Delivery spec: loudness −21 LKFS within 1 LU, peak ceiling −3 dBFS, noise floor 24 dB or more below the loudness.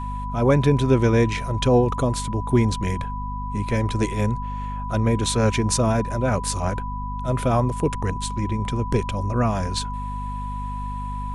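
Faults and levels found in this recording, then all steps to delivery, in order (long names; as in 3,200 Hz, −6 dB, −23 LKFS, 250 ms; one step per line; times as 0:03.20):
mains hum 50 Hz; hum harmonics up to 250 Hz; level of the hum −27 dBFS; interfering tone 990 Hz; level of the tone −31 dBFS; integrated loudness −23.0 LKFS; sample peak −6.0 dBFS; target loudness −21.0 LKFS
→ hum removal 50 Hz, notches 5
notch filter 990 Hz, Q 30
level +2 dB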